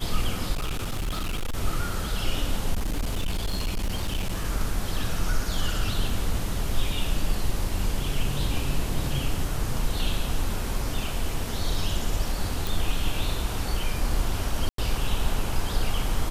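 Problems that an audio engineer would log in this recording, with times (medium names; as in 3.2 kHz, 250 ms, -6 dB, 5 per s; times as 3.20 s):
0.52–1.57 s: clipped -24.5 dBFS
2.73–4.45 s: clipped -22.5 dBFS
12.67 s: pop
14.69–14.78 s: dropout 93 ms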